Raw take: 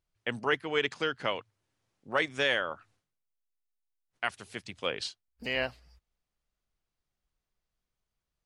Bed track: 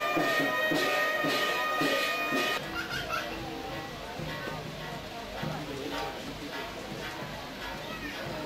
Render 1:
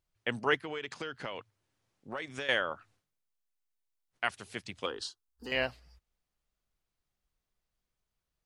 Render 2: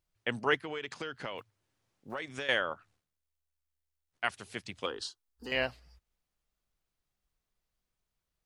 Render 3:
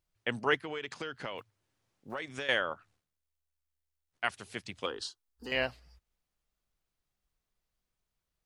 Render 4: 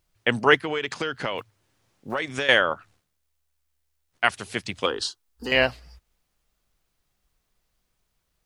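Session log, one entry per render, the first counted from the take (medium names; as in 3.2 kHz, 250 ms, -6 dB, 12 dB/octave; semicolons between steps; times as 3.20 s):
0.55–2.49 s: compression, threshold -34 dBFS; 4.86–5.52 s: static phaser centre 610 Hz, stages 6
1.38–2.15 s: block-companded coder 7-bit; 2.74–4.24 s: AM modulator 75 Hz, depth 40%
no audible change
trim +11 dB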